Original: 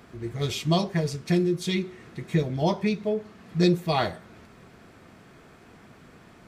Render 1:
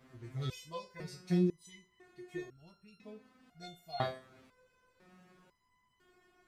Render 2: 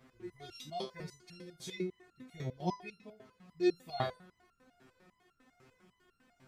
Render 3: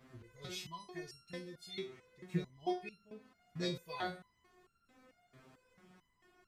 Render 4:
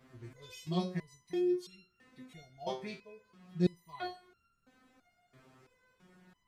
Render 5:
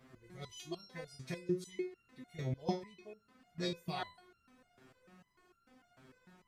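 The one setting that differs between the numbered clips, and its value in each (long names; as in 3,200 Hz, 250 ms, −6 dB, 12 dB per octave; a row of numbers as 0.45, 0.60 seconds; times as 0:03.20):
step-sequenced resonator, speed: 2, 10, 4.5, 3, 6.7 Hertz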